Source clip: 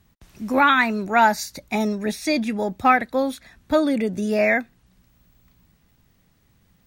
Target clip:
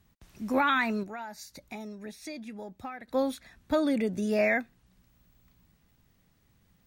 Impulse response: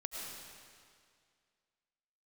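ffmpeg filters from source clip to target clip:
-filter_complex "[0:a]alimiter=limit=-10dB:level=0:latency=1:release=102,asettb=1/sr,asplit=3[link_01][link_02][link_03];[link_01]atrim=end=1.034[link_04];[link_02]atrim=start=1.03:end=3.08,asetpts=PTS-STARTPTS,afade=type=in:duration=0.004:curve=qsin,afade=type=out:start_time=2.046:duration=0.004:curve=qsin,acompressor=threshold=-39dB:ratio=2.5[link_05];[link_03]atrim=start=3.076[link_06];[link_04][link_05]acrossfade=duration=0.004:curve1=hsin:curve2=qsin[link_07];[link_07][link_06]acrossfade=duration=0.004:curve1=qsin:curve2=hsin,volume=-5.5dB"

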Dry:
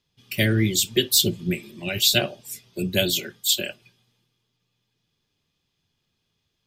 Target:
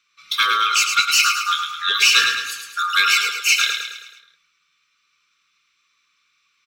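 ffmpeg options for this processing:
ffmpeg -i in.wav -filter_complex "[0:a]afftfilt=real='real(if(lt(b,960),b+48*(1-2*mod(floor(b/48),2)),b),0)':imag='imag(if(lt(b,960),b+48*(1-2*mod(floor(b/48),2)),b),0)':win_size=2048:overlap=0.75,highshelf=frequency=11000:gain=3.5,asplit=2[link_01][link_02];[link_02]alimiter=limit=-14dB:level=0:latency=1:release=145,volume=-2dB[link_03];[link_01][link_03]amix=inputs=2:normalize=0,acontrast=65,asoftclip=type=tanh:threshold=-3dB,asuperstop=centerf=740:order=4:qfactor=0.62,acrossover=split=420 6300:gain=0.2 1 0.141[link_04][link_05][link_06];[link_04][link_05][link_06]amix=inputs=3:normalize=0,aecho=1:1:107|214|321|428|535|642:0.501|0.251|0.125|0.0626|0.0313|0.0157" out.wav

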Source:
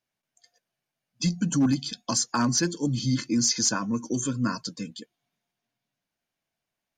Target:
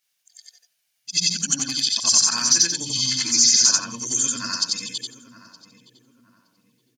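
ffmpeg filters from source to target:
ffmpeg -i in.wav -filter_complex "[0:a]afftfilt=real='re':imag='-im':win_size=8192:overlap=0.75,tiltshelf=frequency=1100:gain=-8.5,acrossover=split=2000|6300[link_01][link_02][link_03];[link_01]acompressor=threshold=-37dB:ratio=4[link_04];[link_02]acompressor=threshold=-27dB:ratio=4[link_05];[link_03]acompressor=threshold=-41dB:ratio=4[link_06];[link_04][link_05][link_06]amix=inputs=3:normalize=0,highshelf=frequency=2400:gain=9.5,asplit=2[link_07][link_08];[link_08]adelay=918,lowpass=frequency=1200:poles=1,volume=-13.5dB,asplit=2[link_09][link_10];[link_10]adelay=918,lowpass=frequency=1200:poles=1,volume=0.37,asplit=2[link_11][link_12];[link_12]adelay=918,lowpass=frequency=1200:poles=1,volume=0.37,asplit=2[link_13][link_14];[link_14]adelay=918,lowpass=frequency=1200:poles=1,volume=0.37[link_15];[link_07][link_09][link_11][link_13][link_15]amix=inputs=5:normalize=0,volume=4.5dB" out.wav

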